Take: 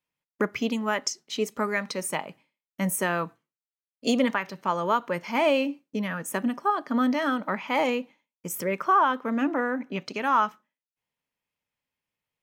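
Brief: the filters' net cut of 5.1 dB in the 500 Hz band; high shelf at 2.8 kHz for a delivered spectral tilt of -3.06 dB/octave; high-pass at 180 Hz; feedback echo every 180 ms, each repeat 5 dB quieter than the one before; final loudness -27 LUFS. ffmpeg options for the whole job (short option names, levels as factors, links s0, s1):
-af "highpass=180,equalizer=f=500:t=o:g=-6.5,highshelf=f=2800:g=7,aecho=1:1:180|360|540|720|900|1080|1260:0.562|0.315|0.176|0.0988|0.0553|0.031|0.0173,volume=0.891"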